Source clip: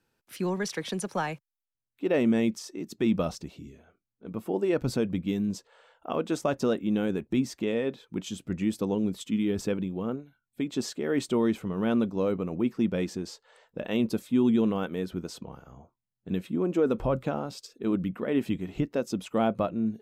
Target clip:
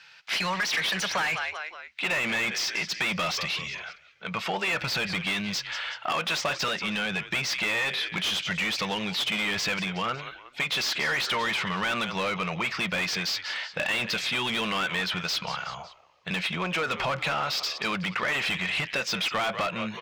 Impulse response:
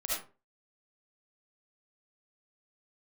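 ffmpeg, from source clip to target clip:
-filter_complex "[0:a]firequalizer=gain_entry='entry(170,0);entry(260,-25);entry(590,-8);entry(2100,11);entry(5000,12);entry(9400,-8)':delay=0.05:min_phase=1,asettb=1/sr,asplit=3[s0][s1][s2];[s0]atrim=end=6.684[s3];[s1]atrim=start=6.68:end=7.28,asetpts=PTS-STARTPTS,afade=t=in:d=0.004:c=qsin,afade=t=out:st=0.596:d=0.004:c=qsin,acrossover=split=350[s4][s5];[s5]acompressor=threshold=0.0141:ratio=4[s6];[s4][s6]amix=inputs=2:normalize=0[s7];[s2]atrim=start=7.276[s8];[s3][s7]acrossfade=d=0.004:c1=hsin:c2=qsin[s9];[s9][s8]acrossfade=d=0.004:c1=qsin:c2=hsin,asplit=4[s10][s11][s12][s13];[s11]adelay=184,afreqshift=-74,volume=0.0944[s14];[s12]adelay=368,afreqshift=-148,volume=0.0427[s15];[s13]adelay=552,afreqshift=-222,volume=0.0191[s16];[s10][s14][s15][s16]amix=inputs=4:normalize=0,asplit=2[s17][s18];[s18]highpass=f=720:p=1,volume=35.5,asoftclip=type=tanh:threshold=0.266[s19];[s17][s19]amix=inputs=2:normalize=0,lowpass=f=1800:p=1,volume=0.501,acompressor=threshold=0.0631:ratio=6,lowshelf=f=210:g=-10"

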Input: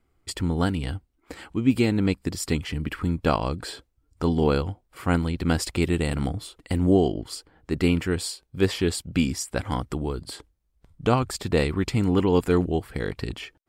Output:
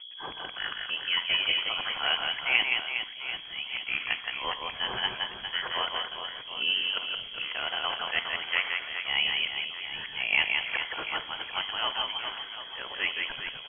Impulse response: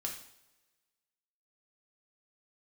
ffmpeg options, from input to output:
-filter_complex "[0:a]areverse,highpass=670,acompressor=mode=upward:threshold=0.00282:ratio=2.5,aeval=exprs='val(0)+0.00631*(sin(2*PI*60*n/s)+sin(2*PI*2*60*n/s)/2+sin(2*PI*3*60*n/s)/3+sin(2*PI*4*60*n/s)/4+sin(2*PI*5*60*n/s)/5)':c=same,aecho=1:1:170|408|741.2|1208|1861:0.631|0.398|0.251|0.158|0.1,asplit=2[s0][s1];[1:a]atrim=start_sample=2205[s2];[s1][s2]afir=irnorm=-1:irlink=0,volume=0.473[s3];[s0][s3]amix=inputs=2:normalize=0,lowpass=f=2900:t=q:w=0.5098,lowpass=f=2900:t=q:w=0.6013,lowpass=f=2900:t=q:w=0.9,lowpass=f=2900:t=q:w=2.563,afreqshift=-3400,volume=0.841"

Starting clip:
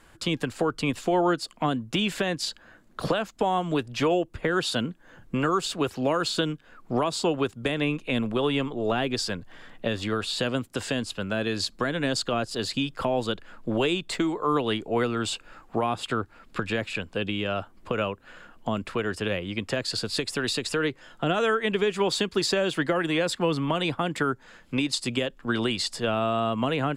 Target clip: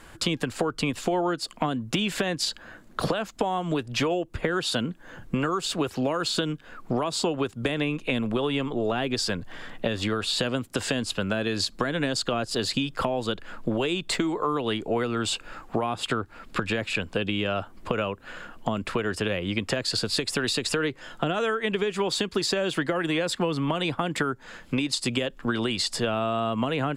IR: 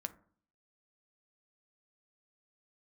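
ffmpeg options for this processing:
-af "acompressor=threshold=0.0316:ratio=6,volume=2.24"

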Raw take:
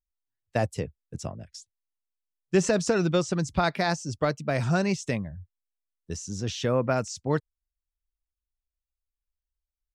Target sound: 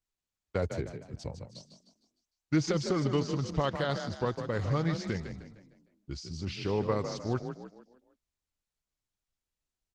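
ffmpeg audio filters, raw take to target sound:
-filter_complex "[0:a]asetrate=36028,aresample=44100,atempo=1.22405,asplit=6[s0][s1][s2][s3][s4][s5];[s1]adelay=153,afreqshift=32,volume=0.398[s6];[s2]adelay=306,afreqshift=64,volume=0.164[s7];[s3]adelay=459,afreqshift=96,volume=0.0668[s8];[s4]adelay=612,afreqshift=128,volume=0.0275[s9];[s5]adelay=765,afreqshift=160,volume=0.0112[s10];[s0][s6][s7][s8][s9][s10]amix=inputs=6:normalize=0,volume=0.562" -ar 48000 -c:a libopus -b:a 16k

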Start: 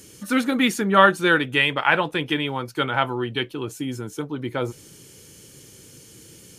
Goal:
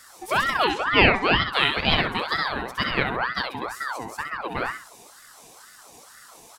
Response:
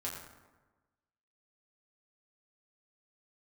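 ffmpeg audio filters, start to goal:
-filter_complex "[0:a]asettb=1/sr,asplit=3[s0][s1][s2];[s0]atrim=end=0.644[s3];[s1]atrim=start=0.64:end=1.5,asetpts=PTS-STARTPTS,afade=t=in:d=0.004:c=qsin,afade=t=out:st=0.856:d=0.004:c=qsin,highpass=110,lowpass=3500[s4];[s2]atrim=start=1.496[s5];[s3][s4]acrossfade=d=0.004:c1=hsin:c2=qsin[s6];[s6][s5]acrossfade=d=0.004:c1=qsin:c2=hsin,aecho=1:1:65|130|195|260:0.562|0.169|0.0506|0.0152,aeval=exprs='val(0)*sin(2*PI*1100*n/s+1100*0.5/2.1*sin(2*PI*2.1*n/s))':c=same"

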